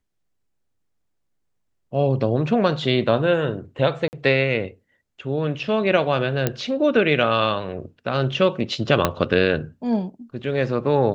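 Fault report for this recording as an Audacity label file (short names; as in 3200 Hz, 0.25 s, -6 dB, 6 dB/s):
4.080000	4.130000	gap 49 ms
6.470000	6.470000	pop -6 dBFS
9.050000	9.050000	pop -3 dBFS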